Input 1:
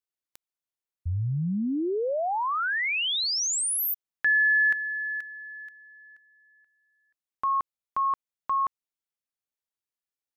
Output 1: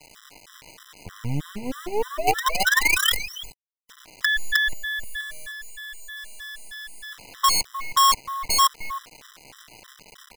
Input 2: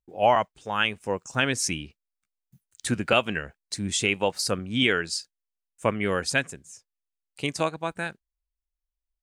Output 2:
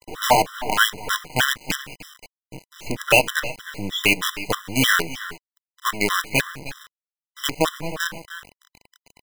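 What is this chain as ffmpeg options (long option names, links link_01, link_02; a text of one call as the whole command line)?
ffmpeg -i in.wav -filter_complex "[0:a]aeval=exprs='val(0)+0.5*0.0251*sgn(val(0))':channel_layout=same,highpass=66,aresample=8000,aresample=44100,lowshelf=frequency=230:gain=-7,bandreject=frequency=610:width=17,aecho=1:1:6.6:0.73,asplit=2[link_01][link_02];[link_02]adelay=310,highpass=300,lowpass=3400,asoftclip=type=hard:threshold=-14dB,volume=-9dB[link_03];[link_01][link_03]amix=inputs=2:normalize=0,acrusher=bits=4:dc=4:mix=0:aa=0.000001,afftfilt=real='re*gt(sin(2*PI*3.2*pts/sr)*(1-2*mod(floor(b*sr/1024/1000),2)),0)':imag='im*gt(sin(2*PI*3.2*pts/sr)*(1-2*mod(floor(b*sr/1024/1000),2)),0)':win_size=1024:overlap=0.75,volume=6dB" out.wav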